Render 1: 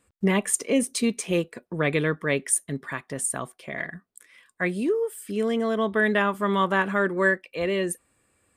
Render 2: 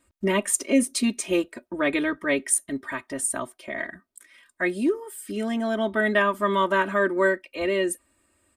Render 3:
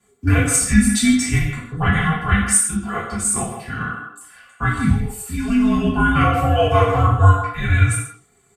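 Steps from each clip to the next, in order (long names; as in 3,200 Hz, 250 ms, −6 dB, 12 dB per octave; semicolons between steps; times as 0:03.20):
comb filter 3.2 ms, depth 95%; level −1.5 dB
frequency shifter −480 Hz; far-end echo of a speakerphone 160 ms, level −8 dB; reverb whose tail is shaped and stops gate 200 ms falling, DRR −7.5 dB; level −1 dB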